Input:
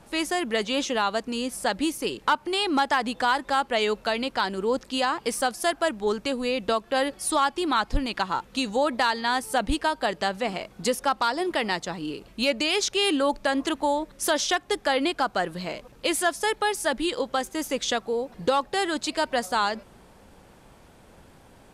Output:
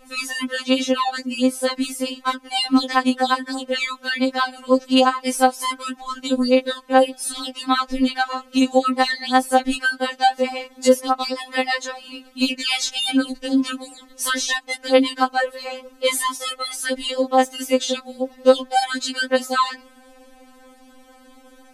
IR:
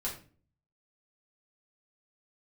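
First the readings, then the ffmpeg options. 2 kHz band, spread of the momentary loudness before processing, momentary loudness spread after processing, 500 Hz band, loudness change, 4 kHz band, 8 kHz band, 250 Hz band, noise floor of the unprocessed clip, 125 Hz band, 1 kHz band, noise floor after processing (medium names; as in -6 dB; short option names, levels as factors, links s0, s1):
+3.5 dB, 5 LU, 9 LU, +5.0 dB, +5.0 dB, +4.5 dB, +4.0 dB, +7.5 dB, -53 dBFS, under -10 dB, +4.0 dB, -50 dBFS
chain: -af "afftfilt=real='re*3.46*eq(mod(b,12),0)':imag='im*3.46*eq(mod(b,12),0)':win_size=2048:overlap=0.75,volume=2.11"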